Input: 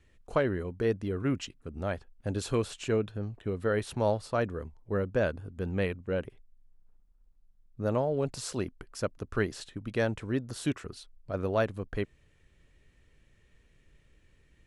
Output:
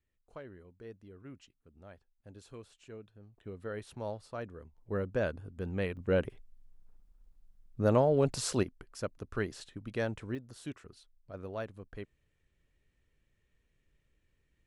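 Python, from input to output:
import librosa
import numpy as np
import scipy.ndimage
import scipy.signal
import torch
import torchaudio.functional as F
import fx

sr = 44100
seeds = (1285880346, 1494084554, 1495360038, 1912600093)

y = fx.gain(x, sr, db=fx.steps((0.0, -20.0), (3.38, -11.5), (4.78, -4.0), (5.97, 3.0), (8.63, -5.0), (10.35, -11.5)))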